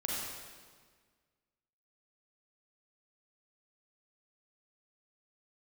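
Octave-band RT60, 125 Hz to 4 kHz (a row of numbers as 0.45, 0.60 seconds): 1.8, 1.9, 1.7, 1.6, 1.5, 1.4 seconds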